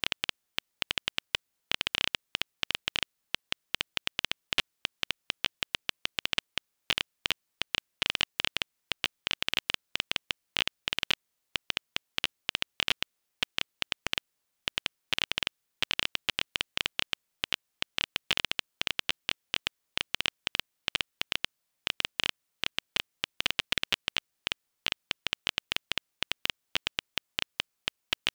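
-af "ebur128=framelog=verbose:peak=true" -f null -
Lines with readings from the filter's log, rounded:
Integrated loudness:
  I:         -32.5 LUFS
  Threshold: -42.5 LUFS
Loudness range:
  LRA:         1.4 LU
  Threshold: -52.4 LUFS
  LRA low:   -33.1 LUFS
  LRA high:  -31.7 LUFS
True peak:
  Peak:       -6.9 dBFS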